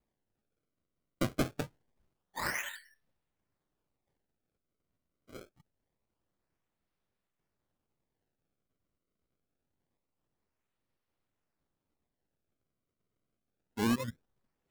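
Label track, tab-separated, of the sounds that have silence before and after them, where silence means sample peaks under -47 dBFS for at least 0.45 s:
1.210000	1.660000	sound
2.360000	2.780000	sound
5.290000	5.430000	sound
13.770000	14.100000	sound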